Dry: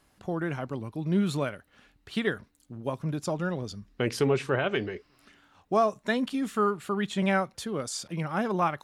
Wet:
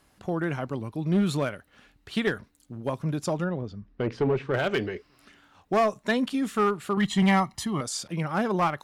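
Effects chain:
0:06.97–0:07.81: comb filter 1 ms, depth 96%
asymmetric clip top −21.5 dBFS
0:03.44–0:04.54: head-to-tape spacing loss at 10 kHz 31 dB
level +2.5 dB

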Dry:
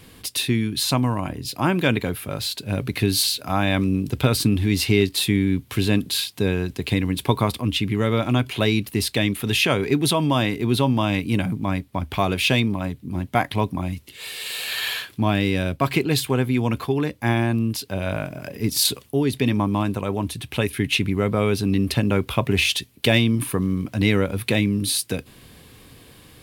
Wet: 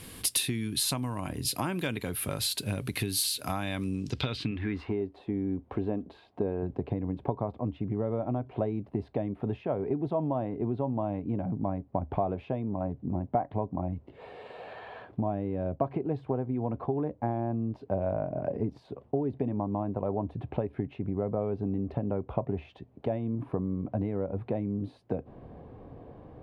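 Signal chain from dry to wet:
0:04.51–0:06.63: parametric band 130 Hz −13.5 dB 0.68 octaves
downward compressor 10 to 1, threshold −28 dBFS, peak gain reduction 16.5 dB
low-pass filter sweep 11,000 Hz → 710 Hz, 0:03.82–0:05.03

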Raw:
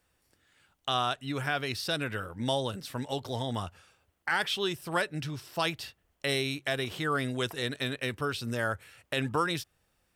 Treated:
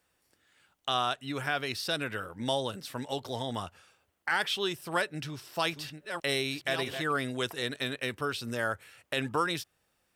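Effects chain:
0:04.92–0:07.12: delay that plays each chunk backwards 641 ms, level −8 dB
low-shelf EQ 110 Hz −11 dB

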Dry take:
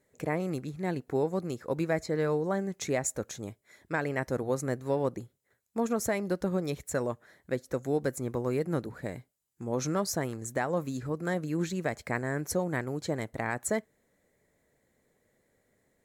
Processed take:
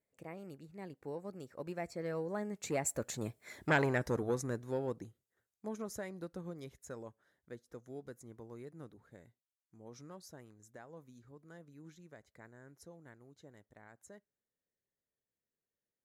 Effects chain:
source passing by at 0:03.59, 22 m/s, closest 5.3 metres
saturating transformer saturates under 1,100 Hz
level +6.5 dB

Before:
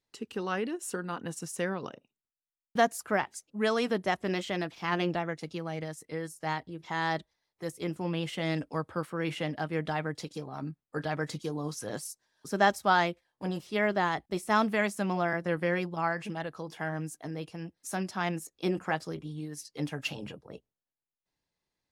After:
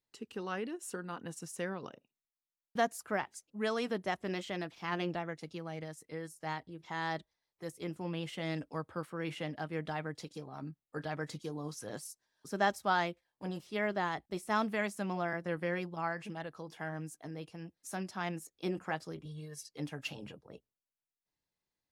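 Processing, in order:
0:19.25–0:19.69: comb filter 1.8 ms, depth 83%
level −6 dB

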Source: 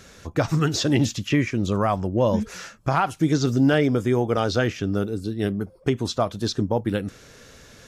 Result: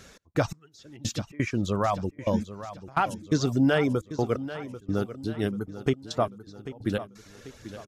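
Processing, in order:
gate pattern "x.x...x.xxx" 86 BPM −24 dB
reverb reduction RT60 0.66 s
repeating echo 790 ms, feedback 46%, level −13.5 dB
level −2.5 dB

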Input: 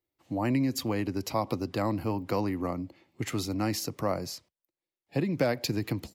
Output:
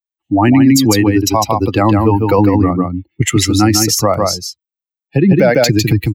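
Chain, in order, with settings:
spectral dynamics exaggerated over time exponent 2
0:02.38–0:03.22: low-shelf EQ 360 Hz +7 dB
on a send: single-tap delay 152 ms −4.5 dB
on the sum: dynamic equaliser 6,500 Hz, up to +6 dB, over −54 dBFS, Q 1.9
boost into a limiter +25 dB
level −1 dB

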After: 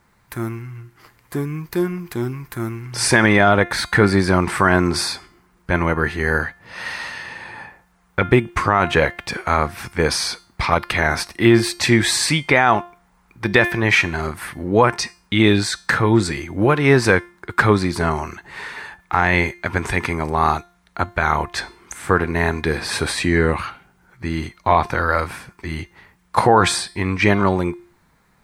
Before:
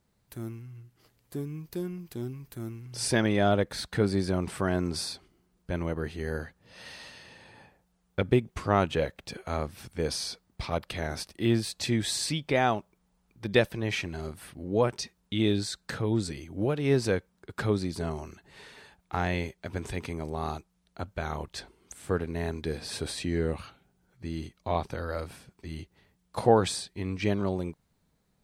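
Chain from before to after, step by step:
flat-topped bell 1,400 Hz +9.5 dB
tuned comb filter 350 Hz, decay 0.41 s, harmonics all, mix 60%
boost into a limiter +20 dB
level −1.5 dB

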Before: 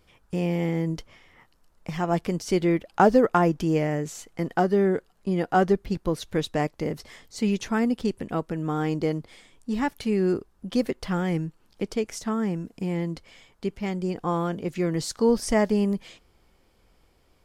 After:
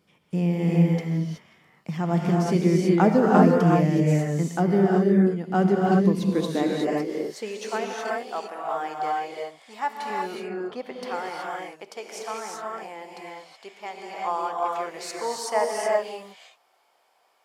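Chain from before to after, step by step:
0:04.94–0:05.51: downward compressor, threshold −27 dBFS, peak gain reduction 7.5 dB
0:10.10–0:10.93: bass and treble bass +14 dB, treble −14 dB
high-pass filter sweep 170 Hz → 770 Hz, 0:05.93–0:08.00
reverb whose tail is shaped and stops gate 400 ms rising, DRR −2.5 dB
level −4.5 dB

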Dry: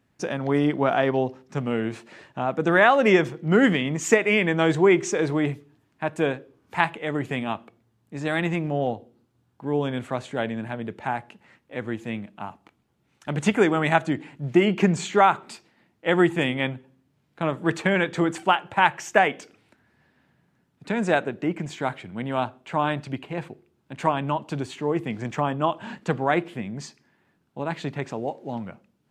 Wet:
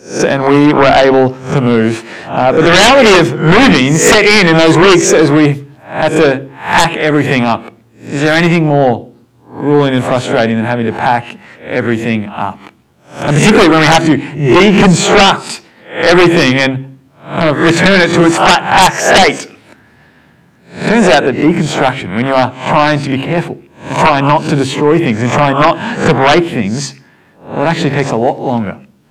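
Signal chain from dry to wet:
peak hold with a rise ahead of every peak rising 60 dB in 0.39 s
hum removal 67.45 Hz, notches 5
sine wavefolder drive 15 dB, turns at −0.5 dBFS
level −1 dB

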